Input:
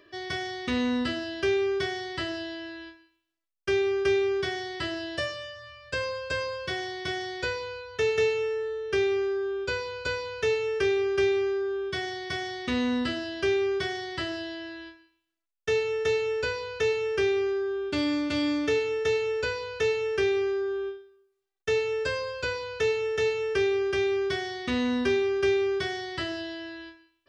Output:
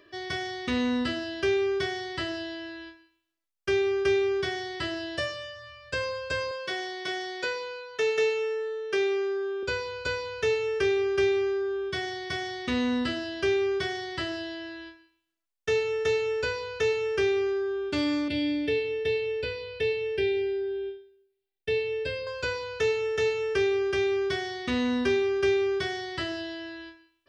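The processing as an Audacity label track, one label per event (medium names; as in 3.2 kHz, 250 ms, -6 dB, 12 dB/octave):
6.510000	9.630000	high-pass 280 Hz
18.280000	22.270000	static phaser centre 2.9 kHz, stages 4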